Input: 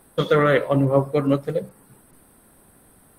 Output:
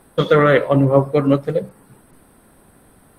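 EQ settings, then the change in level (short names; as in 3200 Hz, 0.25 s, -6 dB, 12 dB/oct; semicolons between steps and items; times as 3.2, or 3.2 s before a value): high shelf 7300 Hz -8.5 dB; +4.5 dB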